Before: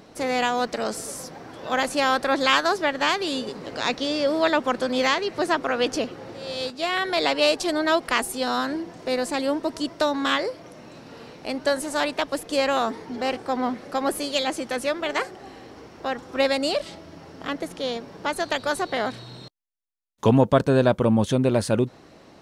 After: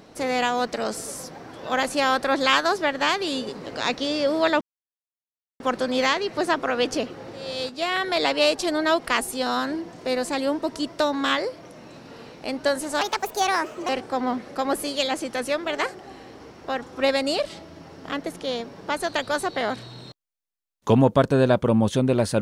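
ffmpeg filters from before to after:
ffmpeg -i in.wav -filter_complex "[0:a]asplit=4[link_01][link_02][link_03][link_04];[link_01]atrim=end=4.61,asetpts=PTS-STARTPTS,afade=type=out:start_time=4.606:duration=0.004:curve=hsin,apad=pad_dur=0.99[link_05];[link_02]atrim=start=4.61:end=12.024,asetpts=PTS-STARTPTS,afade=type=in:duration=0.004:curve=hsin[link_06];[link_03]atrim=start=12.02:end=13.25,asetpts=PTS-STARTPTS,asetrate=61740,aresample=44100[link_07];[link_04]atrim=start=13.246[link_08];[link_05][link_06]concat=n=2:v=0:a=1[link_09];[link_09][link_07]acrossfade=duration=0.004:curve1=hsin:curve2=hsin[link_10];[link_10][link_08]acrossfade=duration=0.004:curve1=hsin:curve2=hsin" out.wav

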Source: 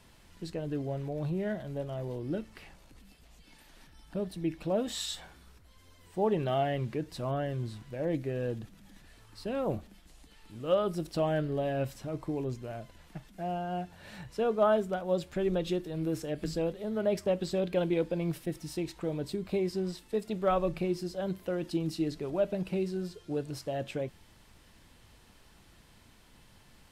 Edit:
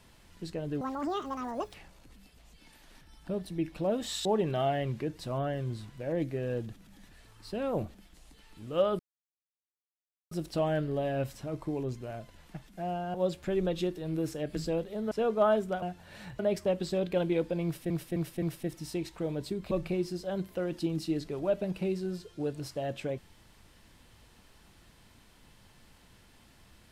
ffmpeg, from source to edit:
ffmpeg -i in.wav -filter_complex "[0:a]asplit=13[link_01][link_02][link_03][link_04][link_05][link_06][link_07][link_08][link_09][link_10][link_11][link_12][link_13];[link_01]atrim=end=0.814[link_14];[link_02]atrim=start=0.81:end=2.6,asetpts=PTS-STARTPTS,asetrate=84672,aresample=44100,atrim=end_sample=41114,asetpts=PTS-STARTPTS[link_15];[link_03]atrim=start=2.596:end=5.112[link_16];[link_04]atrim=start=6.178:end=10.92,asetpts=PTS-STARTPTS,afade=type=out:start_time=4.738:duration=0.004:curve=hsin,apad=pad_dur=1.32[link_17];[link_05]atrim=start=10.92:end=13.752,asetpts=PTS-STARTPTS,afade=type=in:duration=0.004:curve=hsin[link_18];[link_06]atrim=start=15.028:end=17.002[link_19];[link_07]atrim=start=14.318:end=15.032[link_20];[link_08]atrim=start=13.748:end=14.322[link_21];[link_09]atrim=start=16.998:end=18.512[link_22];[link_10]atrim=start=18.248:end=18.512[link_23];[link_11]atrim=start=18.248:end=18.512[link_24];[link_12]atrim=start=18.248:end=19.542[link_25];[link_13]atrim=start=20.618[link_26];[link_14][link_15]acrossfade=duration=0.004:curve1=hsin:curve2=hsin[link_27];[link_27][link_16]acrossfade=duration=0.004:curve1=hsin:curve2=hsin[link_28];[link_17][link_18]concat=n=2:v=0:a=1[link_29];[link_28][link_29]acrossfade=duration=0.004:curve1=hsin:curve2=hsin[link_30];[link_30][link_19]acrossfade=duration=0.004:curve1=hsin:curve2=hsin[link_31];[link_31][link_20]acrossfade=duration=0.004:curve1=hsin:curve2=hsin[link_32];[link_32][link_21]acrossfade=duration=0.004:curve1=hsin:curve2=hsin[link_33];[link_33][link_22]acrossfade=duration=0.004:curve1=hsin:curve2=hsin[link_34];[link_34][link_23]acrossfade=duration=0.004:curve1=hsin:curve2=hsin[link_35];[link_35][link_24]acrossfade=duration=0.004:curve1=hsin:curve2=hsin[link_36];[link_36][link_25]acrossfade=duration=0.004:curve1=hsin:curve2=hsin[link_37];[link_37][link_26]acrossfade=duration=0.004:curve1=hsin:curve2=hsin" out.wav

